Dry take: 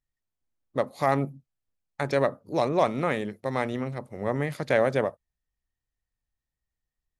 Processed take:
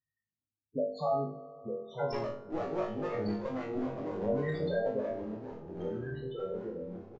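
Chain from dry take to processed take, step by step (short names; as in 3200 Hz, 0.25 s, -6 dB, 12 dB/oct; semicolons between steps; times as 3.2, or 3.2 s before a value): spectral gate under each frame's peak -30 dB strong; HPF 110 Hz 12 dB/oct; high shelf 2300 Hz +8.5 dB; compressor, threshold -28 dBFS, peak gain reduction 12 dB; loudest bins only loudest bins 8; 2.07–4.26 one-sided clip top -44 dBFS; doubler 28 ms -7 dB; flutter echo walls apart 3.3 m, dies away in 0.43 s; reverb RT60 4.1 s, pre-delay 3 ms, DRR 17.5 dB; echoes that change speed 0.755 s, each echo -3 st, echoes 3, each echo -6 dB; downsampling 16000 Hz; gain -1 dB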